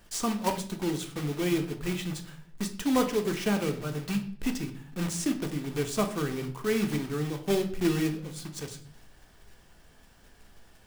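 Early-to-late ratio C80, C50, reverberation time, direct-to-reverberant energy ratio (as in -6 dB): 15.5 dB, 12.0 dB, 0.55 s, 5.0 dB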